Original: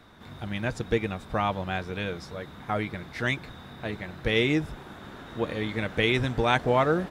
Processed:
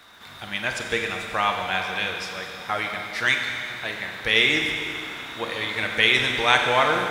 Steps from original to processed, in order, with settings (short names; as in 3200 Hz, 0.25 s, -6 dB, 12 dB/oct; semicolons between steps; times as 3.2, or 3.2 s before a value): crackle 110/s -55 dBFS; tilt shelf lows -10 dB, about 650 Hz; Schroeder reverb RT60 2.6 s, combs from 32 ms, DRR 2.5 dB